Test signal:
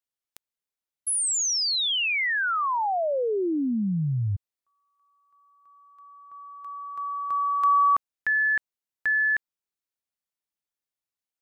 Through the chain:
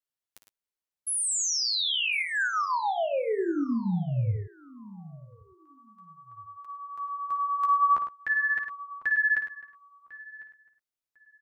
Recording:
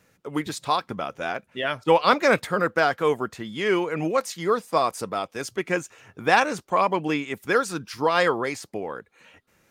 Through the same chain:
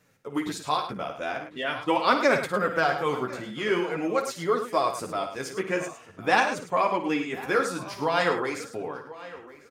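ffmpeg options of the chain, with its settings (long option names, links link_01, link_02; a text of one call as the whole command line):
ffmpeg -i in.wav -filter_complex "[0:a]asplit=2[link_01][link_02];[link_02]adelay=1050,lowpass=frequency=3400:poles=1,volume=-18dB,asplit=2[link_03][link_04];[link_04]adelay=1050,lowpass=frequency=3400:poles=1,volume=0.19[link_05];[link_03][link_05]amix=inputs=2:normalize=0[link_06];[link_01][link_06]amix=inputs=2:normalize=0,flanger=delay=6.5:depth=9.8:regen=-11:speed=0.45:shape=triangular,asplit=2[link_07][link_08];[link_08]aecho=0:1:55.39|105:0.316|0.316[link_09];[link_07][link_09]amix=inputs=2:normalize=0" out.wav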